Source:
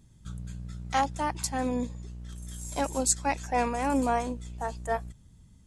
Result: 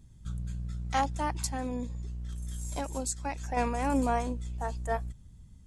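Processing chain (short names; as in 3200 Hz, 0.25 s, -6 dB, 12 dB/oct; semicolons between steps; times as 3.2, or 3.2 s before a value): low shelf 100 Hz +9.5 dB; 1.46–3.57 compressor 4:1, threshold -28 dBFS, peak gain reduction 8 dB; gain -2.5 dB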